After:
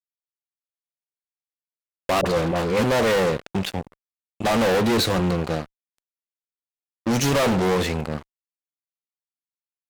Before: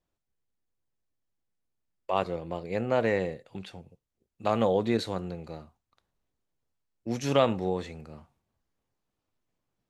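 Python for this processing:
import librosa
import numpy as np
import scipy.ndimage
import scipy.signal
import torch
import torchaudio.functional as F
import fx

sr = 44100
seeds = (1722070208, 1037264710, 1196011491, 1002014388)

y = fx.fuzz(x, sr, gain_db=39.0, gate_db=-48.0)
y = fx.dispersion(y, sr, late='highs', ms=47.0, hz=710.0, at=(2.21, 2.84))
y = y * librosa.db_to_amplitude(-4.5)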